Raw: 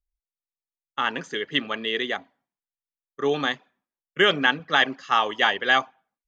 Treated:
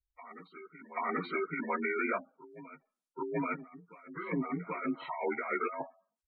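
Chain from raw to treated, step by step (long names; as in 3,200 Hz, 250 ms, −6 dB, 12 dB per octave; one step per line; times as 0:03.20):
partials spread apart or drawn together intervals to 85%
compressor whose output falls as the input rises −30 dBFS, ratio −1
gate on every frequency bin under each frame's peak −15 dB strong
backwards echo 783 ms −16 dB
level −4 dB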